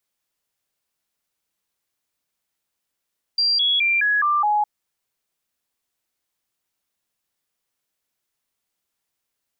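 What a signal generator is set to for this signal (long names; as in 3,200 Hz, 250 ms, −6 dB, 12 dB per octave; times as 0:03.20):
stepped sweep 4,740 Hz down, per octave 2, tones 6, 0.21 s, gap 0.00 s −16 dBFS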